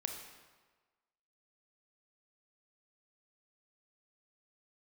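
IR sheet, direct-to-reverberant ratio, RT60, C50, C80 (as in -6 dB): 3.5 dB, 1.4 s, 5.0 dB, 7.0 dB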